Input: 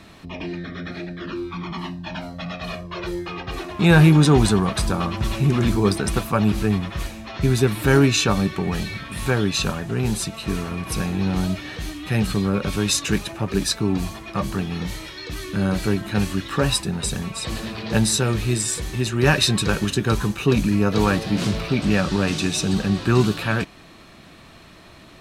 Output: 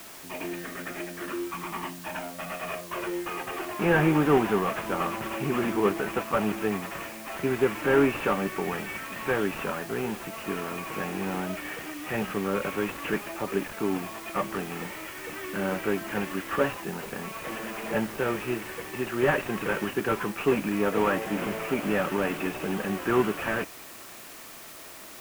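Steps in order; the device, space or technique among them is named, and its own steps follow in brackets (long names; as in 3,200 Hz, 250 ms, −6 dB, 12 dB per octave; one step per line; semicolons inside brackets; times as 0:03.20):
army field radio (band-pass filter 340–2,900 Hz; variable-slope delta modulation 16 kbit/s; white noise bed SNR 17 dB)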